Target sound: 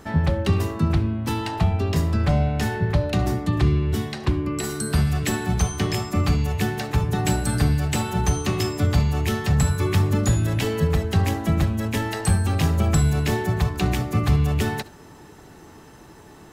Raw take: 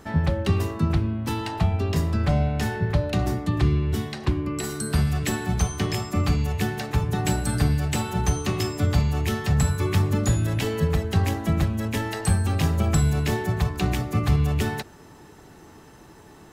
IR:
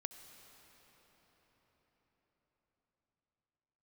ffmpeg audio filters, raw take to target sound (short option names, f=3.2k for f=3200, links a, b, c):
-filter_complex "[0:a]acontrast=41[a];[1:a]atrim=start_sample=2205,atrim=end_sample=3528[b];[a][b]afir=irnorm=-1:irlink=0"